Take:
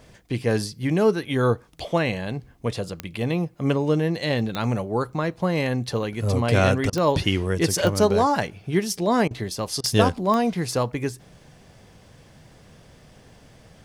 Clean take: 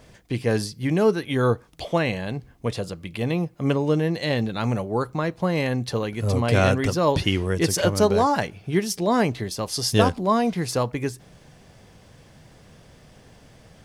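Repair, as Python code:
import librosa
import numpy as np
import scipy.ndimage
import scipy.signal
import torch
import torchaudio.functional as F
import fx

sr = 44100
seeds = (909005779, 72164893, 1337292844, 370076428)

y = fx.fix_declick_ar(x, sr, threshold=10.0)
y = fx.fix_interpolate(y, sr, at_s=(6.9, 9.28, 9.81), length_ms=27.0)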